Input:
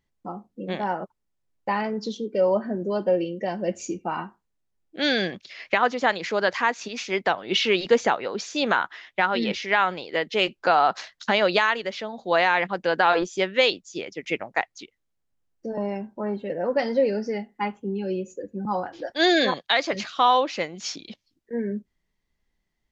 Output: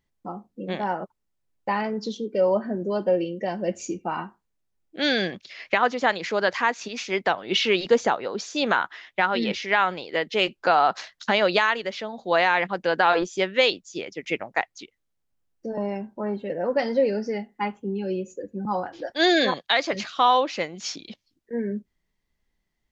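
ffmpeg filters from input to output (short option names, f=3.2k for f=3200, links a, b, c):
-filter_complex "[0:a]asettb=1/sr,asplit=3[a][b][c];[a]atrim=end=7.874[d];[b]atrim=start=7.87:end=8.57,asetpts=PTS-STARTPTS,afade=t=in:d=0.004:c=qsin,afade=t=out:st=0.696:d=0.004:c=qsin,equalizer=f=2.3k:w=1.5:g=-4.5[e];[c]atrim=start=8.566[f];[d][e]acrossfade=d=0.004:c1=hsin:c2=qsin[g];[g][f]acrossfade=d=0.004:c1=qsin:c2=hsin"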